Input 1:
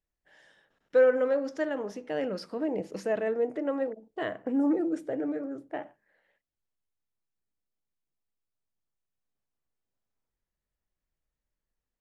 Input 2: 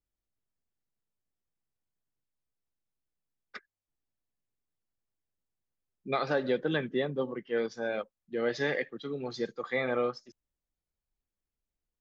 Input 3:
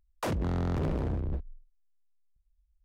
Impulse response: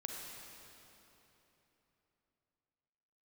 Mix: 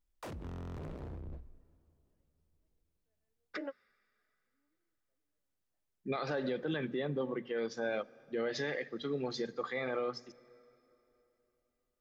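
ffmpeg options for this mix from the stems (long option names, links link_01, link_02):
-filter_complex "[0:a]lowpass=2300,flanger=delay=7.6:depth=9.2:regen=46:speed=0.39:shape=sinusoidal,crystalizer=i=6:c=0,volume=-6dB[link_01];[1:a]alimiter=level_in=4dB:limit=-24dB:level=0:latency=1:release=53,volume=-4dB,volume=0.5dB,asplit=3[link_02][link_03][link_04];[link_03]volume=-17.5dB[link_05];[2:a]asoftclip=type=hard:threshold=-29dB,volume=-12dB,asplit=2[link_06][link_07];[link_07]volume=-16.5dB[link_08];[link_04]apad=whole_len=529426[link_09];[link_01][link_09]sidechaingate=range=-53dB:threshold=-56dB:ratio=16:detection=peak[link_10];[3:a]atrim=start_sample=2205[link_11];[link_05][link_08]amix=inputs=2:normalize=0[link_12];[link_12][link_11]afir=irnorm=-1:irlink=0[link_13];[link_10][link_02][link_06][link_13]amix=inputs=4:normalize=0,bandreject=frequency=60:width_type=h:width=6,bandreject=frequency=120:width_type=h:width=6,bandreject=frequency=180:width_type=h:width=6,bandreject=frequency=240:width_type=h:width=6"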